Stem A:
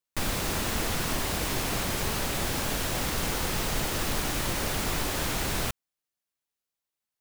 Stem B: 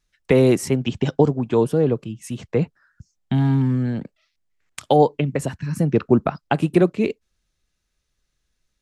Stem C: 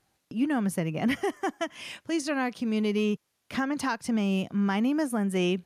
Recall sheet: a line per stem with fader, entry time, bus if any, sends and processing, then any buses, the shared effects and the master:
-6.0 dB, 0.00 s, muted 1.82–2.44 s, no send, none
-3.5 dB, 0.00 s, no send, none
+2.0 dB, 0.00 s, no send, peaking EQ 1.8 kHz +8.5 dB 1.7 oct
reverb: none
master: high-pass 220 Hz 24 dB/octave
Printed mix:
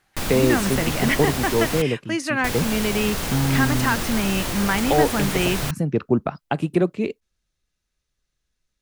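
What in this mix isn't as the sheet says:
stem A -6.0 dB -> +2.5 dB; master: missing high-pass 220 Hz 24 dB/octave

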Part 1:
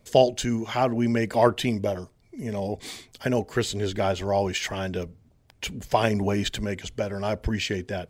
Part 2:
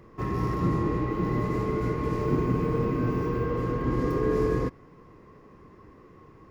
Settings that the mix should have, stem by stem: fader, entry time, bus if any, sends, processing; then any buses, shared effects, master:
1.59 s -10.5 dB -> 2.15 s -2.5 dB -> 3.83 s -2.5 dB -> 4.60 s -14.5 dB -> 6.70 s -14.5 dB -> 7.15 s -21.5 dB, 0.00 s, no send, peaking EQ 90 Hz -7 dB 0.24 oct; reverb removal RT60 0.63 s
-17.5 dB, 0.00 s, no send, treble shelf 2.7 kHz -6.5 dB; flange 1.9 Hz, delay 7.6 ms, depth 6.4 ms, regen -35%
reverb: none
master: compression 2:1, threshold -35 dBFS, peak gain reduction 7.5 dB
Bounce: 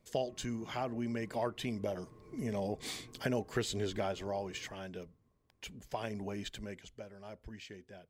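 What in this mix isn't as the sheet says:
stem 1: missing reverb removal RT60 0.63 s; stem 2 -17.5 dB -> -26.0 dB

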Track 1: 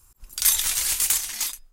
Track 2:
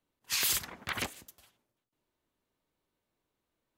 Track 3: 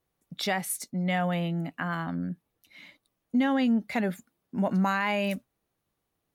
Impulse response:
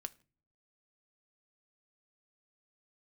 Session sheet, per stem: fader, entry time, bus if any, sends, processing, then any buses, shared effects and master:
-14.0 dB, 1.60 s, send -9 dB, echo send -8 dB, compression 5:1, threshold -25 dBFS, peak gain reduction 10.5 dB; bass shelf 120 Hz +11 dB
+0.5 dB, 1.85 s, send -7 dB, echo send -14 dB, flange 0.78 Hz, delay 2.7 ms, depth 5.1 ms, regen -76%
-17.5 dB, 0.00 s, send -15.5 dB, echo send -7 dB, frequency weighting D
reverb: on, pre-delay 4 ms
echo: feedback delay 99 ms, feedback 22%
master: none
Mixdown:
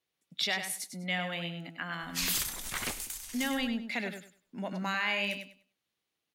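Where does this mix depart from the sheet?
stem 1: entry 1.60 s -> 2.00 s; stem 3 -17.5 dB -> -9.5 dB

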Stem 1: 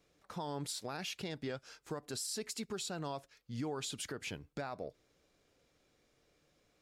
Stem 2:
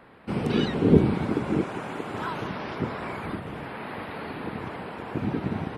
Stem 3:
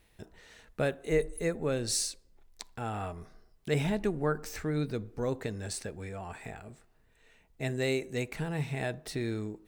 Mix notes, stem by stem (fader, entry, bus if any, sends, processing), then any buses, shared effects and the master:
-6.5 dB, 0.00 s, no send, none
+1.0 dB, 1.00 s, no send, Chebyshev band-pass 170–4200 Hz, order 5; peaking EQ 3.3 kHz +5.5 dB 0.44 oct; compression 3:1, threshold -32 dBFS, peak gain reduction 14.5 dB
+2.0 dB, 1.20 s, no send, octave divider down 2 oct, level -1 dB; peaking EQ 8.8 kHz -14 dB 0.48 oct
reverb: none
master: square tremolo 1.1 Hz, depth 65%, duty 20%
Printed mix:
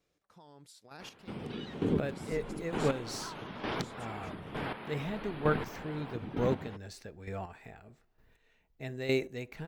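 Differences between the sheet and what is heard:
stem 2: missing Chebyshev band-pass 170–4200 Hz, order 5; stem 3: missing octave divider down 2 oct, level -1 dB

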